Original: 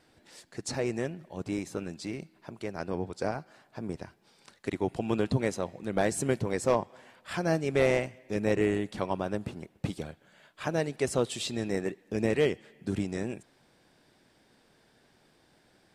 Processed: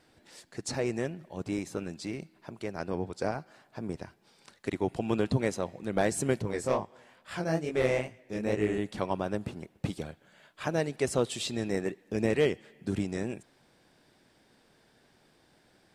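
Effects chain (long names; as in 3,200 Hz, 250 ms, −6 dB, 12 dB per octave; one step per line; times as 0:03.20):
0:06.42–0:08.78: chorus effect 2.3 Hz, delay 18 ms, depth 7.5 ms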